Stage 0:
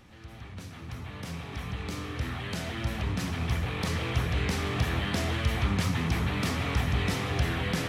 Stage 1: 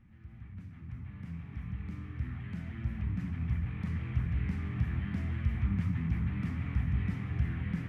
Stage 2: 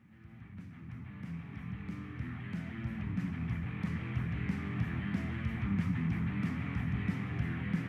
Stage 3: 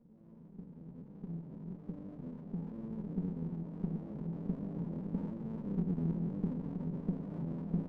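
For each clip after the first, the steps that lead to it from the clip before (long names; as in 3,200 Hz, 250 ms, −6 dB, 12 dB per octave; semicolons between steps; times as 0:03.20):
drawn EQ curve 210 Hz 0 dB, 490 Hz −20 dB, 2,100 Hz −9 dB, 3,900 Hz −26 dB; level −2.5 dB
high-pass filter 150 Hz 12 dB per octave; level +3.5 dB
mains-hum notches 50/100/150/200 Hz; brick-wall band-pass 130–800 Hz; windowed peak hold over 33 samples; level +1 dB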